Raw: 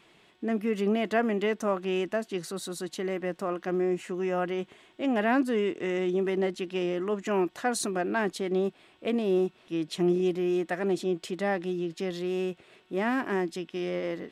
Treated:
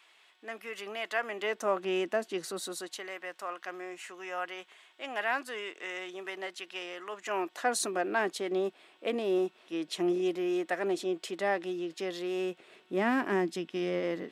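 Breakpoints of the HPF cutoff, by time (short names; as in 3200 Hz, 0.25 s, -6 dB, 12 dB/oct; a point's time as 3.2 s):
1.2 s 950 Hz
1.81 s 310 Hz
2.65 s 310 Hz
3.08 s 930 Hz
7.12 s 930 Hz
7.67 s 370 Hz
12.34 s 370 Hz
13.03 s 160 Hz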